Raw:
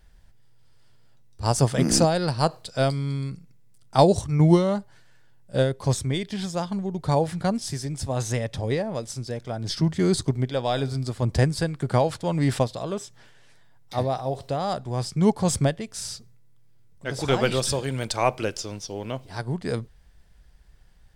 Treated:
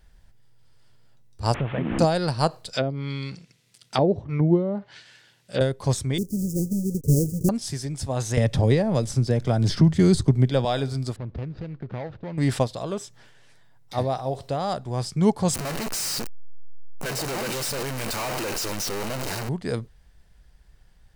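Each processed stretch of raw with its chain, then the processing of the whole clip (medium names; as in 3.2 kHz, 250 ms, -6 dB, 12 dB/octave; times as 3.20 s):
1.54–1.99 s: one-bit delta coder 16 kbps, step -29.5 dBFS + compression 4:1, threshold -22 dBFS
2.73–5.61 s: companding laws mixed up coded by mu + frequency weighting D + low-pass that closes with the level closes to 490 Hz, closed at -18 dBFS
6.18–7.49 s: square wave that keeps the level + inverse Chebyshev band-stop 750–3700 Hz + peaking EQ 1.9 kHz -4 dB 1.6 oct
8.37–10.65 s: bass shelf 270 Hz +9 dB + three bands compressed up and down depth 70%
11.16–12.38 s: median filter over 41 samples + low-pass 4.4 kHz 24 dB/octave + compression 4:1, threshold -31 dBFS
15.54–19.49 s: one-bit comparator + peaking EQ 62 Hz -14 dB 1.3 oct + band-stop 3.4 kHz, Q 9.2
whole clip: none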